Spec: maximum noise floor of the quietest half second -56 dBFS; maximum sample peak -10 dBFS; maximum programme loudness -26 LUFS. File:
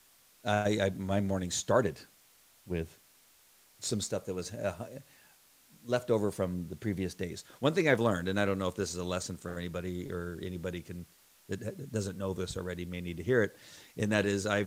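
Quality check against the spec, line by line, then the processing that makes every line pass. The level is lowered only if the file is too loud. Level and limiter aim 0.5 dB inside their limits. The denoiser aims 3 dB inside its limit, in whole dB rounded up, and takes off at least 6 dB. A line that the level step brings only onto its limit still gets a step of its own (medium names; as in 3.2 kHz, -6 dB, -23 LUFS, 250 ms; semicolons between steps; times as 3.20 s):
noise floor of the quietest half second -63 dBFS: pass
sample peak -11.0 dBFS: pass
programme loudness -33.0 LUFS: pass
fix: none needed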